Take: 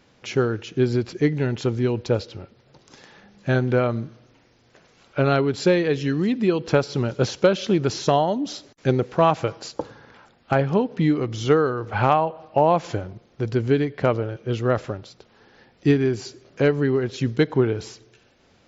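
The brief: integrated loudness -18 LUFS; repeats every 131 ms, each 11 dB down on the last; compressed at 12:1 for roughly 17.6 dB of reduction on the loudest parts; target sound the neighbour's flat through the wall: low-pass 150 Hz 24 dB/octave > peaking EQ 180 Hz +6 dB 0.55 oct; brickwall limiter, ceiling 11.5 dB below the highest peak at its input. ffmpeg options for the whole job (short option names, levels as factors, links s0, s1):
-af "acompressor=threshold=0.0282:ratio=12,alimiter=level_in=1.78:limit=0.0631:level=0:latency=1,volume=0.562,lowpass=f=150:w=0.5412,lowpass=f=150:w=1.3066,equalizer=f=180:t=o:w=0.55:g=6,aecho=1:1:131|262|393:0.282|0.0789|0.0221,volume=22.4"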